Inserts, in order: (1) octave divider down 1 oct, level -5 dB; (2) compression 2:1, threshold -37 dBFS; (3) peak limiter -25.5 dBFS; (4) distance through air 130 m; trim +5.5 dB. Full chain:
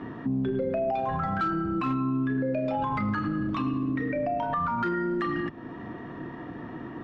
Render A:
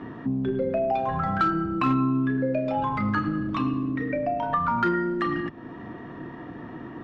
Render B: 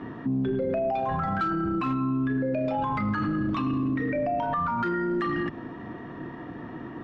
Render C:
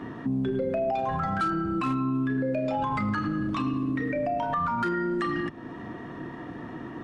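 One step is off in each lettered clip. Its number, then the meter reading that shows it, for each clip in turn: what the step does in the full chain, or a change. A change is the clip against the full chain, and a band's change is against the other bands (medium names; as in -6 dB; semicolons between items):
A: 3, mean gain reduction 1.5 dB; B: 2, mean gain reduction 8.0 dB; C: 4, 4 kHz band +2.5 dB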